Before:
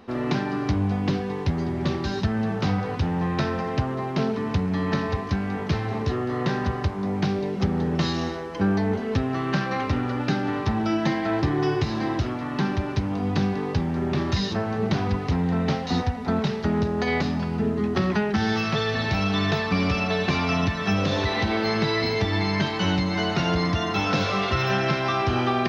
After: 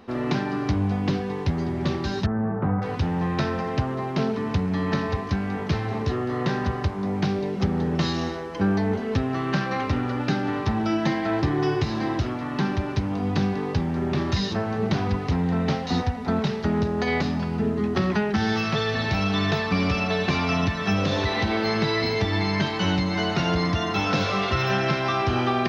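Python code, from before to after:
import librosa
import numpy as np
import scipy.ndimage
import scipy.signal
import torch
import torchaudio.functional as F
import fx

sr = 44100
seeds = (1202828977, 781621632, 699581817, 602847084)

y = fx.lowpass(x, sr, hz=1500.0, slope=24, at=(2.26, 2.82))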